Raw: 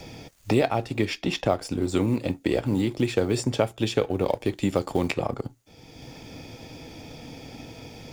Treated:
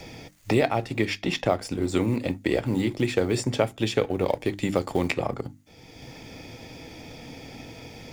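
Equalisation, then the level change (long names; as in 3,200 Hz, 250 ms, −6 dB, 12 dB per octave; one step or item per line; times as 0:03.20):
parametric band 2,000 Hz +5 dB 0.4 octaves
mains-hum notches 50/100/150/200/250/300 Hz
0.0 dB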